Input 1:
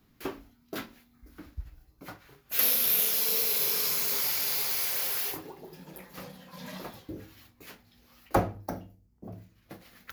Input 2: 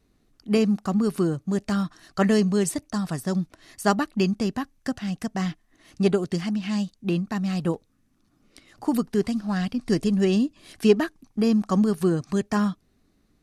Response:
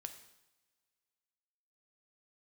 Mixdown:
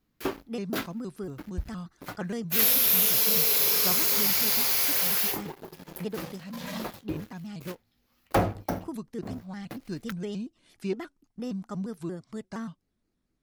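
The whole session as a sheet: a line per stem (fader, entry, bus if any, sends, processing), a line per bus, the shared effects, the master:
−5.5 dB, 0.00 s, no send, leveller curve on the samples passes 3
−13.5 dB, 0.00 s, no send, pitch modulation by a square or saw wave square 4.3 Hz, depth 160 cents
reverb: not used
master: no processing

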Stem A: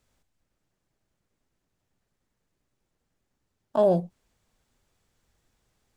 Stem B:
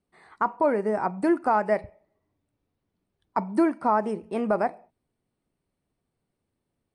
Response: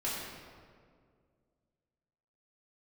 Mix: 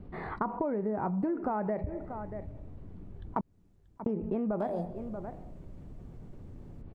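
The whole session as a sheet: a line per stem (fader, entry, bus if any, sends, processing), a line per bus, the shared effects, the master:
−4.5 dB, 0.85 s, send −18.5 dB, no echo send, brickwall limiter −17 dBFS, peak gain reduction 6.5 dB
−6.5 dB, 0.00 s, muted 0:03.41–0:04.06, no send, echo send −18 dB, Bessel low-pass filter 3,000 Hz, order 2; spectral tilt −4 dB per octave; envelope flattener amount 50%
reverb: on, RT60 2.0 s, pre-delay 3 ms
echo: single-tap delay 634 ms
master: downward compressor 10 to 1, threshold −28 dBFS, peak gain reduction 11.5 dB

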